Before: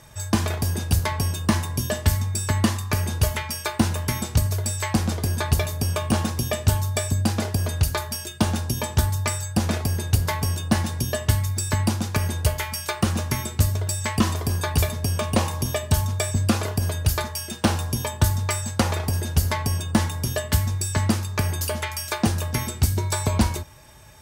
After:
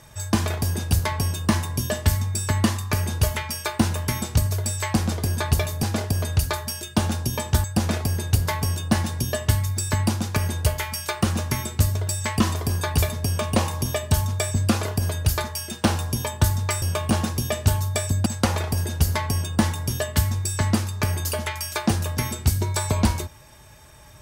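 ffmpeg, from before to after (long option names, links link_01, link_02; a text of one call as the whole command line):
ffmpeg -i in.wav -filter_complex "[0:a]asplit=5[link_01][link_02][link_03][link_04][link_05];[link_01]atrim=end=5.832[link_06];[link_02]atrim=start=7.268:end=9.082[link_07];[link_03]atrim=start=9.438:end=18.622[link_08];[link_04]atrim=start=5.828:end=7.272[link_09];[link_05]atrim=start=18.618[link_10];[link_06][link_07]acrossfade=duration=0.004:curve1=hsin:curve2=hsin[link_11];[link_11][link_08]acrossfade=duration=0.004:curve1=hsin:curve2=hsin[link_12];[link_12][link_09]acrossfade=duration=0.004:curve1=hsin:curve2=hsin[link_13];[link_13][link_10]acrossfade=duration=0.004:curve1=hsin:curve2=hsin" out.wav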